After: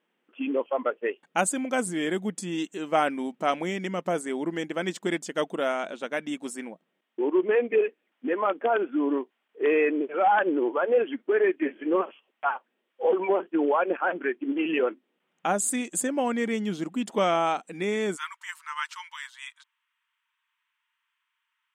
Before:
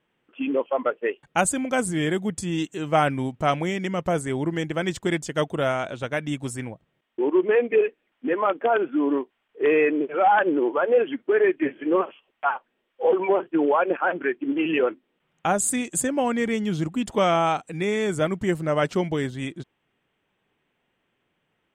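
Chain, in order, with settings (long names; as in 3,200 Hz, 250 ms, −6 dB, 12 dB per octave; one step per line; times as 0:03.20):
linear-phase brick-wall high-pass 170 Hz, from 0:18.15 880 Hz
level −3 dB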